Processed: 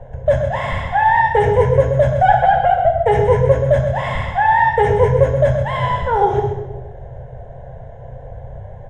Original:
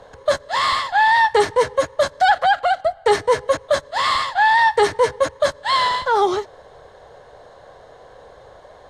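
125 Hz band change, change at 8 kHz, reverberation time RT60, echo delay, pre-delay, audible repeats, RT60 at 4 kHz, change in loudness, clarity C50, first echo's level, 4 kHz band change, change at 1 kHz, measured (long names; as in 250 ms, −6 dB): +23.5 dB, below −10 dB, 1.1 s, 130 ms, 3 ms, 1, 0.75 s, +2.5 dB, 4.5 dB, −9.0 dB, −11.5 dB, +2.0 dB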